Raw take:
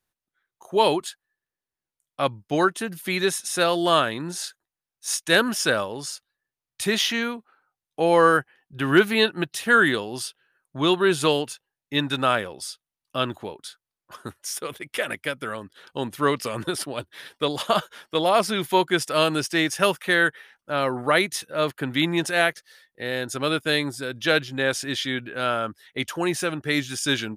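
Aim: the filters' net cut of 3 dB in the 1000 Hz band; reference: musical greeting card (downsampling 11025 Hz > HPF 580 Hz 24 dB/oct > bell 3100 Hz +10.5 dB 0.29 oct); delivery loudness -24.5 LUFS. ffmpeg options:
-af "equalizer=f=1k:t=o:g=-4,aresample=11025,aresample=44100,highpass=f=580:w=0.5412,highpass=f=580:w=1.3066,equalizer=f=3.1k:t=o:w=0.29:g=10.5,volume=-0.5dB"

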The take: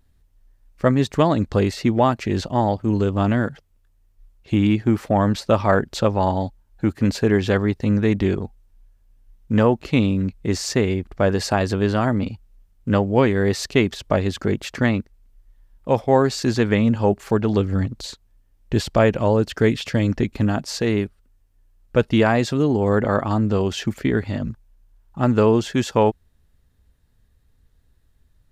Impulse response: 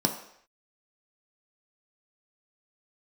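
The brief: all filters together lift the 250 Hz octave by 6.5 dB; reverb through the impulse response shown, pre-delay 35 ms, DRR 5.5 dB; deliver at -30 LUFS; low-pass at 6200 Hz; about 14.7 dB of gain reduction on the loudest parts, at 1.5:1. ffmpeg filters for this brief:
-filter_complex "[0:a]lowpass=6.2k,equalizer=f=250:t=o:g=8,acompressor=threshold=-51dB:ratio=1.5,asplit=2[a][b];[1:a]atrim=start_sample=2205,adelay=35[c];[b][c]afir=irnorm=-1:irlink=0,volume=-15dB[d];[a][d]amix=inputs=2:normalize=0,volume=-4.5dB"

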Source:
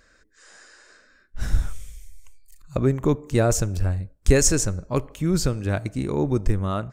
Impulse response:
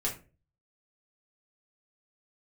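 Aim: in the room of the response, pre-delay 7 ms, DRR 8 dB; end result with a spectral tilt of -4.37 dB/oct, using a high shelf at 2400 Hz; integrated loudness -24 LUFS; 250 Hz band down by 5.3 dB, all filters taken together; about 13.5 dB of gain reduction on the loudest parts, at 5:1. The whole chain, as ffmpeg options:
-filter_complex "[0:a]equalizer=f=250:t=o:g=-8,highshelf=f=2.4k:g=8,acompressor=threshold=-25dB:ratio=5,asplit=2[a][b];[1:a]atrim=start_sample=2205,adelay=7[c];[b][c]afir=irnorm=-1:irlink=0,volume=-12.5dB[d];[a][d]amix=inputs=2:normalize=0,volume=5.5dB"

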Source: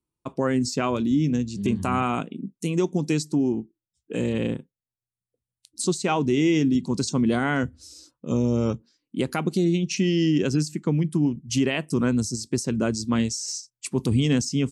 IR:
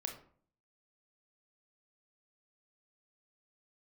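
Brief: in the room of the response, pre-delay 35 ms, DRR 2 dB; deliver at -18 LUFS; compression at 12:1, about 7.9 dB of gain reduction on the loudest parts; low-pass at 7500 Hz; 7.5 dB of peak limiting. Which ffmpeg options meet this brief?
-filter_complex "[0:a]lowpass=7.5k,acompressor=threshold=-25dB:ratio=12,alimiter=limit=-22.5dB:level=0:latency=1,asplit=2[a][b];[1:a]atrim=start_sample=2205,adelay=35[c];[b][c]afir=irnorm=-1:irlink=0,volume=-1.5dB[d];[a][d]amix=inputs=2:normalize=0,volume=12dB"

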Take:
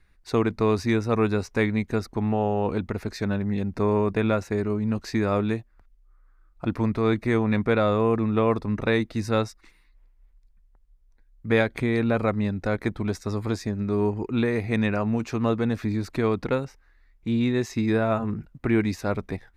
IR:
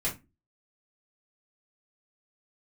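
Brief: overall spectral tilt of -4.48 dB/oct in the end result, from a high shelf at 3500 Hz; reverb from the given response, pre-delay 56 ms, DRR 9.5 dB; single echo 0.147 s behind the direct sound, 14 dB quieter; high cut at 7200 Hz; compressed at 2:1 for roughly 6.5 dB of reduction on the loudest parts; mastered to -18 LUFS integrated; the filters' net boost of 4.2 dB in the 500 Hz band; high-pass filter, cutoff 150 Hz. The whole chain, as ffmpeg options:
-filter_complex "[0:a]highpass=150,lowpass=7.2k,equalizer=f=500:t=o:g=5,highshelf=f=3.5k:g=4,acompressor=threshold=-26dB:ratio=2,aecho=1:1:147:0.2,asplit=2[a][b];[1:a]atrim=start_sample=2205,adelay=56[c];[b][c]afir=irnorm=-1:irlink=0,volume=-15.5dB[d];[a][d]amix=inputs=2:normalize=0,volume=9.5dB"

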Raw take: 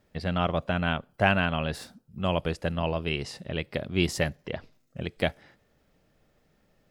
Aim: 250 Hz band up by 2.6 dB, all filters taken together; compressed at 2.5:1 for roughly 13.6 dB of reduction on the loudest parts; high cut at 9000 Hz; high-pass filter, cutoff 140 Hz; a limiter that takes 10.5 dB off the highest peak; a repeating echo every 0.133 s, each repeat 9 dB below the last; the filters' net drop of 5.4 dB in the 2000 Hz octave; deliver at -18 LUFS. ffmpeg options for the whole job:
-af "highpass=140,lowpass=9k,equalizer=f=250:t=o:g=5.5,equalizer=f=2k:t=o:g=-8,acompressor=threshold=-39dB:ratio=2.5,alimiter=level_in=6.5dB:limit=-24dB:level=0:latency=1,volume=-6.5dB,aecho=1:1:133|266|399|532:0.355|0.124|0.0435|0.0152,volume=25.5dB"

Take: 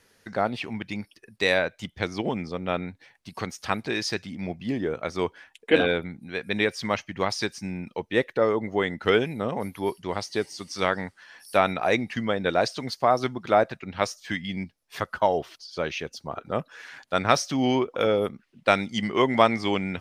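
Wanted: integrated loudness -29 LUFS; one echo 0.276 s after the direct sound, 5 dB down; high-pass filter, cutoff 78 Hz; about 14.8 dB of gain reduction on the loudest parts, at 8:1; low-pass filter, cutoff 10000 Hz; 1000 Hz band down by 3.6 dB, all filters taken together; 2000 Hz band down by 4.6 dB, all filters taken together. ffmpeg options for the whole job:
-af "highpass=78,lowpass=10k,equalizer=f=1k:t=o:g=-4,equalizer=f=2k:t=o:g=-4.5,acompressor=threshold=-32dB:ratio=8,aecho=1:1:276:0.562,volume=8dB"

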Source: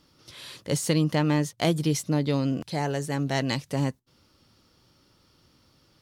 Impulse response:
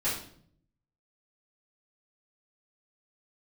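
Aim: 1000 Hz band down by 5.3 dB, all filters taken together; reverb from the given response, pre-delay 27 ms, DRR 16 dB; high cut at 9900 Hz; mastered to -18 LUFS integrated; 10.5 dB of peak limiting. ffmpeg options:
-filter_complex "[0:a]lowpass=9.9k,equalizer=f=1k:t=o:g=-7.5,alimiter=limit=-22dB:level=0:latency=1,asplit=2[a][b];[1:a]atrim=start_sample=2205,adelay=27[c];[b][c]afir=irnorm=-1:irlink=0,volume=-24dB[d];[a][d]amix=inputs=2:normalize=0,volume=13.5dB"

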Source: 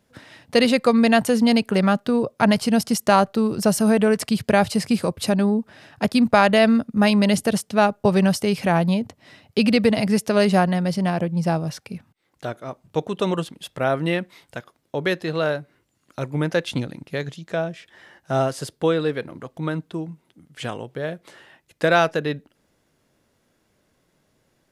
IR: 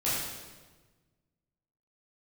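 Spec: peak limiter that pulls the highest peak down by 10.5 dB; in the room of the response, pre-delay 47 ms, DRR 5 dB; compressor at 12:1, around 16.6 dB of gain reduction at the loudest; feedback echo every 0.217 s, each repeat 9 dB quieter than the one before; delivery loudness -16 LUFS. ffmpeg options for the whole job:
-filter_complex "[0:a]acompressor=threshold=-29dB:ratio=12,alimiter=level_in=1dB:limit=-24dB:level=0:latency=1,volume=-1dB,aecho=1:1:217|434|651|868:0.355|0.124|0.0435|0.0152,asplit=2[a][b];[1:a]atrim=start_sample=2205,adelay=47[c];[b][c]afir=irnorm=-1:irlink=0,volume=-14.5dB[d];[a][d]amix=inputs=2:normalize=0,volume=18.5dB"

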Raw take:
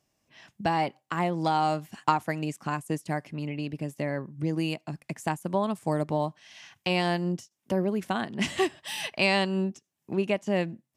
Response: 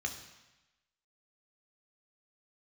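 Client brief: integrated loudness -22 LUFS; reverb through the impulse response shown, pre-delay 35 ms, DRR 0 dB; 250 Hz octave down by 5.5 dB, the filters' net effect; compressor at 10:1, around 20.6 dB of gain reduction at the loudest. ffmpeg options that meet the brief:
-filter_complex "[0:a]equalizer=f=250:t=o:g=-9,acompressor=threshold=-39dB:ratio=10,asplit=2[a][b];[1:a]atrim=start_sample=2205,adelay=35[c];[b][c]afir=irnorm=-1:irlink=0,volume=-2dB[d];[a][d]amix=inputs=2:normalize=0,volume=19.5dB"

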